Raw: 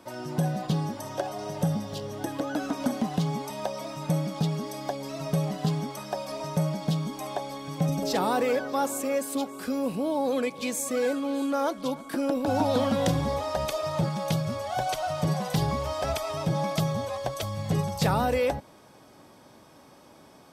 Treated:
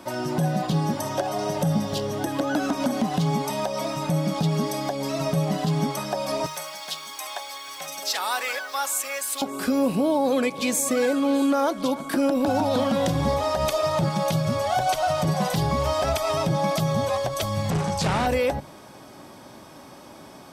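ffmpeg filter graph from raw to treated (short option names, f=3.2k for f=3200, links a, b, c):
-filter_complex "[0:a]asettb=1/sr,asplit=3[a][b][c];[a]atrim=end=6.464[d];[b]atrim=start=6.46:end=9.42,asetpts=PTS-STARTPTS,afade=t=in:d=0.004:c=qsin,afade=t=out:st=2.956:d=0.004:c=qsin,highpass=1.4k,acrusher=bits=8:mix=0:aa=0.5[e];[c]atrim=start=9.416[f];[d][e]acrossfade=d=0.004:c1=hsin:c2=qsin[g];[g][f]acrossfade=d=0.004:c1=qsin:c2=hsin,asettb=1/sr,asplit=3[h][i][j];[h]atrim=end=17.704[k];[i]atrim=start=17.7:end=18.27,asetpts=PTS-STARTPTS,afade=t=in:d=0.004:c=qsin,afade=t=out:st=0.566:d=0.004:c=qsin,volume=29.5dB,asoftclip=hard,volume=-29.5dB,lowpass=f=10k:w=0.5412,lowpass=f=10k:w=1.3066[l];[j]atrim=start=18.266[m];[k][l]acrossfade=d=0.004:c1=hsin:c2=qsin[n];[n][m]acrossfade=d=0.004:c1=qsin:c2=hsin,bandreject=f=470:w=12,alimiter=limit=-22.5dB:level=0:latency=1:release=129,bandreject=f=50:t=h:w=6,bandreject=f=100:t=h:w=6,bandreject=f=150:t=h:w=6,volume=8.5dB"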